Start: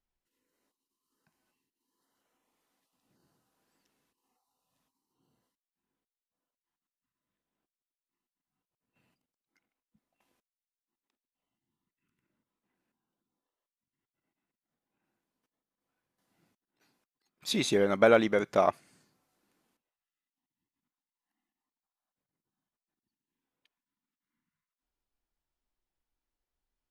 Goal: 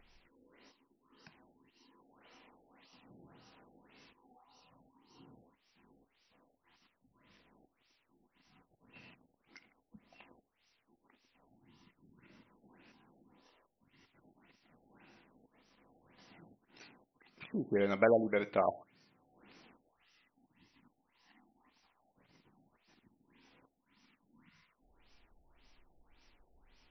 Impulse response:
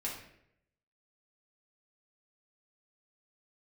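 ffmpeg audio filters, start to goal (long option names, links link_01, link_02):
-filter_complex "[0:a]aexciter=amount=2.2:drive=3.4:freq=2100,acompressor=mode=upward:threshold=-33dB:ratio=2.5,asplit=2[link_01][link_02];[1:a]atrim=start_sample=2205,atrim=end_sample=6174[link_03];[link_02][link_03]afir=irnorm=-1:irlink=0,volume=-13dB[link_04];[link_01][link_04]amix=inputs=2:normalize=0,afftfilt=real='re*lt(b*sr/1024,820*pow(6100/820,0.5+0.5*sin(2*PI*1.8*pts/sr)))':imag='im*lt(b*sr/1024,820*pow(6100/820,0.5+0.5*sin(2*PI*1.8*pts/sr)))':win_size=1024:overlap=0.75,volume=-7dB"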